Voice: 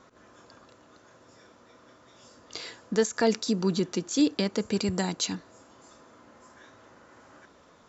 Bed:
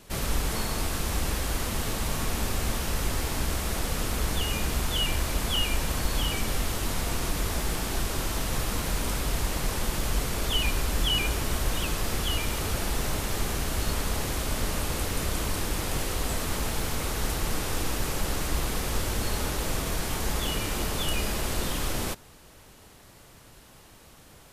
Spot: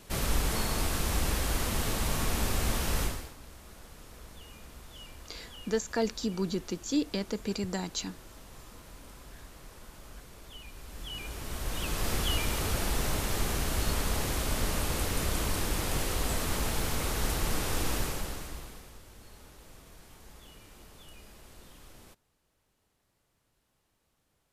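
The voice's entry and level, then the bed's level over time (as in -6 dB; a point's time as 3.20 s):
2.75 s, -5.5 dB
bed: 3.03 s -1 dB
3.36 s -21.5 dB
10.66 s -21.5 dB
12.08 s -1.5 dB
17.98 s -1.5 dB
19.00 s -23.5 dB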